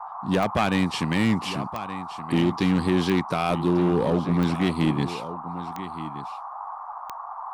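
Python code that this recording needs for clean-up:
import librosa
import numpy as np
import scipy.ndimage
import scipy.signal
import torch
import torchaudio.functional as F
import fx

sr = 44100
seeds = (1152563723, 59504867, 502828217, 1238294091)

y = fx.fix_declip(x, sr, threshold_db=-14.5)
y = fx.fix_declick_ar(y, sr, threshold=10.0)
y = fx.noise_reduce(y, sr, print_start_s=6.78, print_end_s=7.28, reduce_db=30.0)
y = fx.fix_echo_inverse(y, sr, delay_ms=1173, level_db=-14.0)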